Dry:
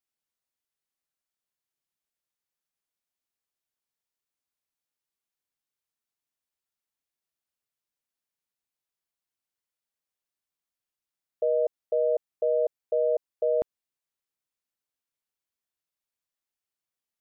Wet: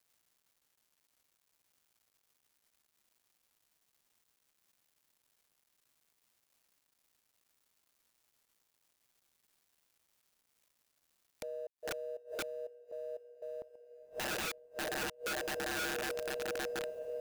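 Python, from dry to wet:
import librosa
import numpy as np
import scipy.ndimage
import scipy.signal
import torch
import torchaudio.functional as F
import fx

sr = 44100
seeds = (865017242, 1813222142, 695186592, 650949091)

y = fx.law_mismatch(x, sr, coded='mu')
y = fx.echo_diffused(y, sr, ms=552, feedback_pct=80, wet_db=-14.0)
y = fx.gate_flip(y, sr, shuts_db=-34.0, range_db=-28)
y = (np.mod(10.0 ** (42.0 / 20.0) * y + 1.0, 2.0) - 1.0) / 10.0 ** (42.0 / 20.0)
y = F.gain(torch.from_numpy(y), 9.5).numpy()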